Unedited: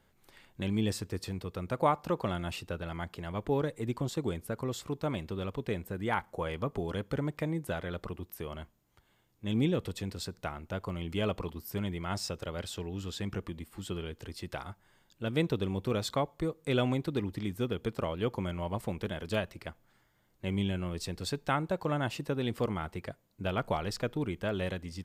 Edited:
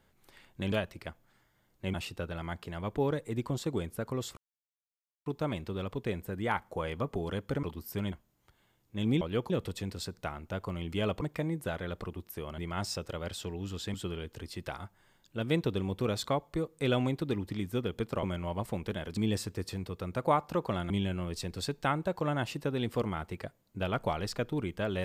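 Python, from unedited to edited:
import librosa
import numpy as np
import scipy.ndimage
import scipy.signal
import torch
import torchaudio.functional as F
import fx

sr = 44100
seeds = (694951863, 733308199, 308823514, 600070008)

y = fx.edit(x, sr, fx.swap(start_s=0.72, length_s=1.73, other_s=19.32, other_length_s=1.22),
    fx.insert_silence(at_s=4.88, length_s=0.89),
    fx.swap(start_s=7.25, length_s=1.36, other_s=11.42, other_length_s=0.49),
    fx.cut(start_s=13.27, length_s=0.53),
    fx.move(start_s=18.09, length_s=0.29, to_s=9.7), tone=tone)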